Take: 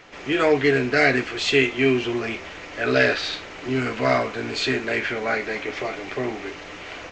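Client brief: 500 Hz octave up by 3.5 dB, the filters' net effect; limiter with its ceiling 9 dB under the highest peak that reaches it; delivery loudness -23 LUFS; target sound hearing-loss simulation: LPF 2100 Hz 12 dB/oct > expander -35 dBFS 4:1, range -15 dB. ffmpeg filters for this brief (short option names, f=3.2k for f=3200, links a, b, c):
-af "equalizer=f=500:t=o:g=4.5,alimiter=limit=-11.5dB:level=0:latency=1,lowpass=2.1k,agate=range=-15dB:threshold=-35dB:ratio=4,volume=1dB"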